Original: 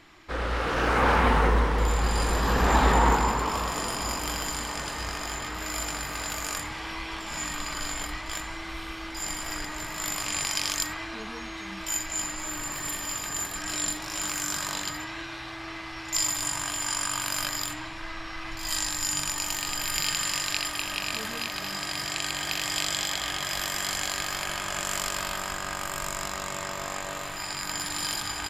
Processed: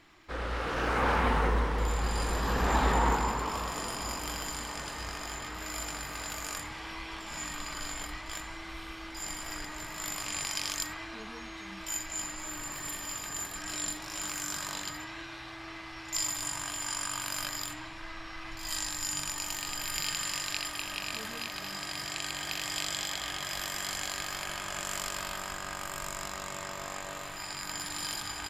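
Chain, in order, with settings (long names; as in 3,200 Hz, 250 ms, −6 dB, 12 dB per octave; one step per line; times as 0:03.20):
surface crackle 110 per second −57 dBFS
level −5.5 dB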